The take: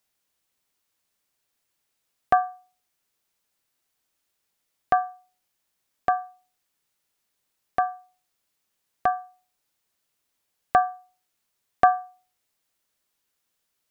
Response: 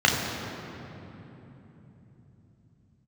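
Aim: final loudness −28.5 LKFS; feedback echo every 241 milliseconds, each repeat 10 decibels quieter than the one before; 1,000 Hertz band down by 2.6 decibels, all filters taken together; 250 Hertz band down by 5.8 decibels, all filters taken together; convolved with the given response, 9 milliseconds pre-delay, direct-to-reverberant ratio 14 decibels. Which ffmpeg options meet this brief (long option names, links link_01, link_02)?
-filter_complex "[0:a]equalizer=frequency=250:width_type=o:gain=-8,equalizer=frequency=1000:width_type=o:gain=-3.5,aecho=1:1:241|482|723|964:0.316|0.101|0.0324|0.0104,asplit=2[link_01][link_02];[1:a]atrim=start_sample=2205,adelay=9[link_03];[link_02][link_03]afir=irnorm=-1:irlink=0,volume=-33dB[link_04];[link_01][link_04]amix=inputs=2:normalize=0,volume=2dB"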